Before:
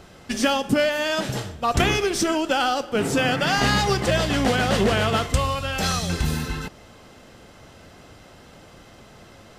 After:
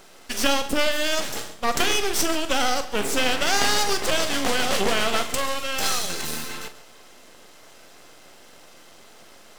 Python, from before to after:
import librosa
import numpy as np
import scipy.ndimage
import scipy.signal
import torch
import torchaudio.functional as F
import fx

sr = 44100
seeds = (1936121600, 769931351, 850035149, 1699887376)

y = scipy.signal.sosfilt(scipy.signal.butter(2, 310.0, 'highpass', fs=sr, output='sos'), x)
y = fx.high_shelf(y, sr, hz=4500.0, db=8.0)
y = np.maximum(y, 0.0)
y = fx.doubler(y, sr, ms=43.0, db=-11)
y = y + 10.0 ** (-16.5 / 20.0) * np.pad(y, (int(136 * sr / 1000.0), 0))[:len(y)]
y = y * librosa.db_to_amplitude(2.0)